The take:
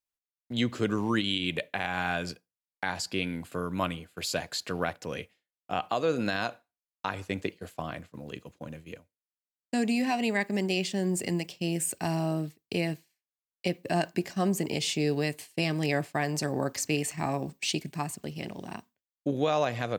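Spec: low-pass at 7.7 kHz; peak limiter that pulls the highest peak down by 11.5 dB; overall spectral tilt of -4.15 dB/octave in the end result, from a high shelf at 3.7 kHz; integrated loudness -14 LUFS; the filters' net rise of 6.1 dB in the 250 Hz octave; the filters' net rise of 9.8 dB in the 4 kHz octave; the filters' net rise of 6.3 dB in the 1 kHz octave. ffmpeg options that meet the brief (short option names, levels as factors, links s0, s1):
-af "lowpass=7700,equalizer=f=250:t=o:g=7.5,equalizer=f=1000:t=o:g=7.5,highshelf=f=3700:g=5.5,equalizer=f=4000:t=o:g=9,volume=5.96,alimiter=limit=0.794:level=0:latency=1"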